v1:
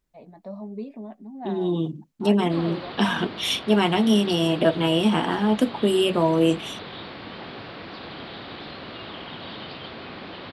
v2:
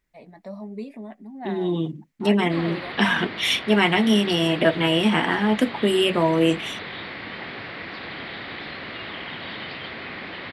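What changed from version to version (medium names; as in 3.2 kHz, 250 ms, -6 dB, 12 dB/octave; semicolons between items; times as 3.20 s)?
first voice: remove low-pass 3.3 kHz 12 dB/octave; master: add peaking EQ 2 kHz +11.5 dB 0.65 oct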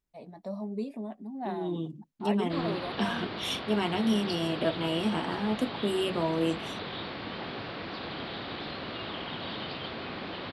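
second voice -9.0 dB; master: add peaking EQ 2 kHz -11.5 dB 0.65 oct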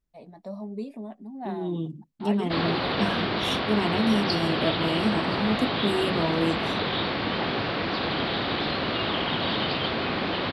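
second voice: add bass shelf 240 Hz +7.5 dB; background +10.5 dB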